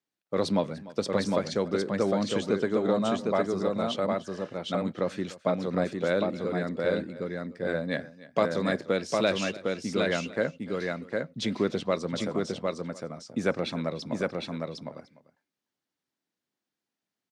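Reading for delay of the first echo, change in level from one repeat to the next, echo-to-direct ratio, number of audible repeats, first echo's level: 297 ms, repeats not evenly spaced, −3.0 dB, 3, −19.0 dB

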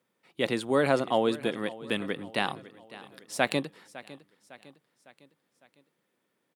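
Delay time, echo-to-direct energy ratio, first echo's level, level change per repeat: 555 ms, −17.0 dB, −18.0 dB, −6.0 dB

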